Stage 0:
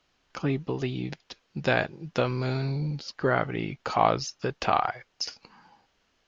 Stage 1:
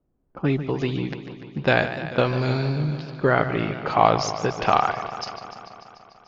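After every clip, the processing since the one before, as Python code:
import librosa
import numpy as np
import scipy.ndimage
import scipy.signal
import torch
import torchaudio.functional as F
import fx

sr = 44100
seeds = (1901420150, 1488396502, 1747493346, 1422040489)

y = fx.env_lowpass(x, sr, base_hz=350.0, full_db=-24.5)
y = fx.echo_warbled(y, sr, ms=147, feedback_pct=73, rate_hz=2.8, cents=98, wet_db=-12.0)
y = F.gain(torch.from_numpy(y), 5.0).numpy()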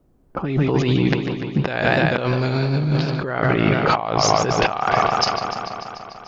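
y = fx.over_compress(x, sr, threshold_db=-28.0, ratio=-1.0)
y = F.gain(torch.from_numpy(y), 8.5).numpy()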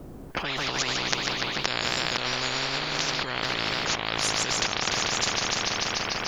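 y = fx.spectral_comp(x, sr, ratio=10.0)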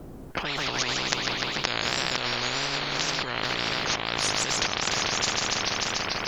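y = fx.wow_flutter(x, sr, seeds[0], rate_hz=2.1, depth_cents=86.0)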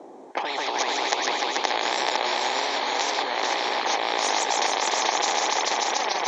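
y = fx.cabinet(x, sr, low_hz=330.0, low_slope=24, high_hz=6700.0, hz=(840.0, 1400.0, 2800.0, 4800.0), db=(9, -10, -9, -8))
y = y + 10.0 ** (-3.5 / 20.0) * np.pad(y, (int(435 * sr / 1000.0), 0))[:len(y)]
y = F.gain(torch.from_numpy(y), 3.5).numpy()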